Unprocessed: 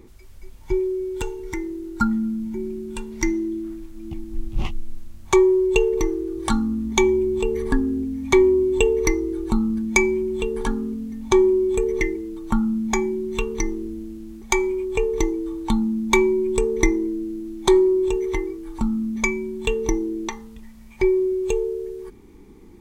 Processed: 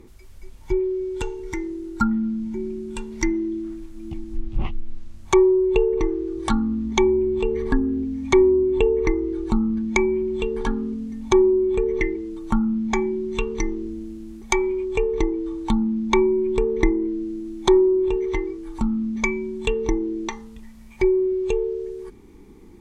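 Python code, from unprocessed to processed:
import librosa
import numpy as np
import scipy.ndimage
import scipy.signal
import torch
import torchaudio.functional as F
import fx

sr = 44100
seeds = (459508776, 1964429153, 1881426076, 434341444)

y = fx.env_lowpass_down(x, sr, base_hz=1300.0, full_db=-14.5)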